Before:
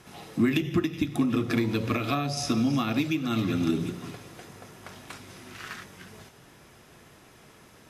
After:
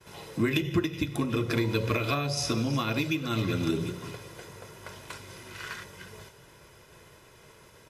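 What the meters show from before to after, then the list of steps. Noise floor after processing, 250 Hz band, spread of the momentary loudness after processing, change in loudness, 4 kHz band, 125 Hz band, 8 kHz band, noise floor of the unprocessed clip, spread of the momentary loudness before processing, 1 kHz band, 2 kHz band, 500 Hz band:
-55 dBFS, -4.0 dB, 17 LU, -2.0 dB, +1.5 dB, +0.5 dB, +1.0 dB, -54 dBFS, 20 LU, -1.0 dB, +1.0 dB, +1.0 dB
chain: expander -51 dBFS; comb 2 ms, depth 55%

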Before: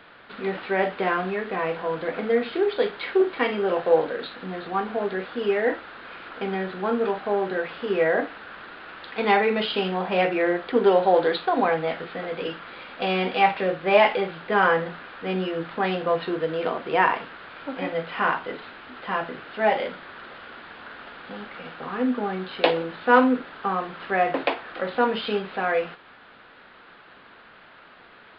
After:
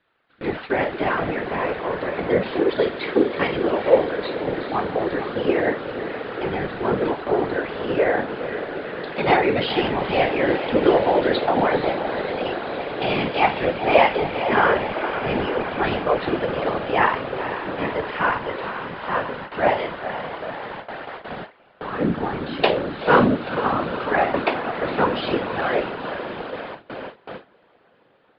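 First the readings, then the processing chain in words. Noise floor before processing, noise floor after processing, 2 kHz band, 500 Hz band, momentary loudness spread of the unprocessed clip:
-50 dBFS, -56 dBFS, +2.0 dB, +2.5 dB, 18 LU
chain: diffused feedback echo 0.479 s, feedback 76%, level -9.5 dB; whisperiser; gate with hold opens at -24 dBFS; gain +1.5 dB

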